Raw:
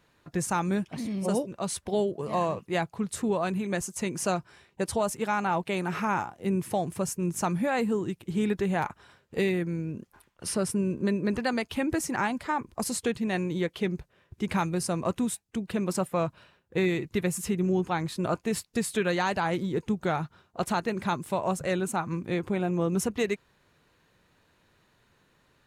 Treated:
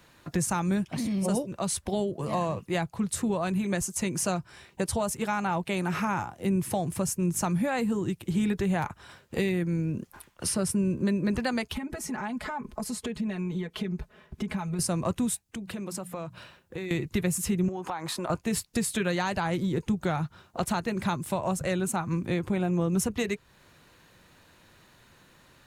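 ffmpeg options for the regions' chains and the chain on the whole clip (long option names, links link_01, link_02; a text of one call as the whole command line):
ffmpeg -i in.wav -filter_complex "[0:a]asettb=1/sr,asplit=3[link_01][link_02][link_03];[link_01]atrim=end=11.734[link_04];[link_02]atrim=start=11.73:end=14.79,asetpts=PTS-STARTPTS,afade=type=in:duration=0.004:curve=qsin,afade=type=out:start_time=3.056:duration=0.004:curve=qsin,acompressor=threshold=-37dB:ratio=5:attack=3.2:release=140:knee=1:detection=peak,highshelf=frequency=3100:gain=-9,aecho=1:1:4.7:0.96,atrim=end_sample=134946[link_05];[link_03]atrim=start=14.786[link_06];[link_04][link_05]acrossfade=duration=0.004:curve1=hsin:curve2=qsin[link_07];[link_07][link_06]acrossfade=duration=0.004:curve1=qsin:curve2=hsin,asettb=1/sr,asplit=3[link_08][link_09][link_10];[link_08]atrim=end=15.474[link_11];[link_09]atrim=start=15.47:end=16.91,asetpts=PTS-STARTPTS,afade=type=in:duration=0.004:curve=qsin,afade=type=out:start_time=1.436:duration=0.004:curve=qsin,bandreject=frequency=60:width_type=h:width=6,bandreject=frequency=120:width_type=h:width=6,bandreject=frequency=180:width_type=h:width=6,acompressor=threshold=-45dB:ratio=2.5:attack=3.2:release=140:knee=1:detection=peak[link_12];[link_10]atrim=start=16.906[link_13];[link_11][link_12]acrossfade=duration=0.004:curve1=hsin:curve2=qsin[link_14];[link_14][link_13]acrossfade=duration=0.004:curve1=qsin:curve2=hsin,asettb=1/sr,asplit=3[link_15][link_16][link_17];[link_15]atrim=end=17.684[link_18];[link_16]atrim=start=17.68:end=18.3,asetpts=PTS-STARTPTS,afade=type=in:duration=0.004:curve=qsin,afade=type=out:start_time=0.616:duration=0.004:curve=qsin,highpass=frequency=370:poles=1,equalizer=frequency=910:width_type=o:width=1.6:gain=11,acompressor=threshold=-34dB:ratio=4:attack=3.2:release=140:knee=1:detection=peak[link_19];[link_17]atrim=start=18.296[link_20];[link_18][link_19]acrossfade=duration=0.004:curve1=hsin:curve2=qsin[link_21];[link_21][link_20]acrossfade=duration=0.004:curve1=qsin:curve2=hsin,highshelf=frequency=5000:gain=5,bandreject=frequency=430:width=12,acrossover=split=140[link_22][link_23];[link_23]acompressor=threshold=-41dB:ratio=2[link_24];[link_22][link_24]amix=inputs=2:normalize=0,volume=7.5dB" out.wav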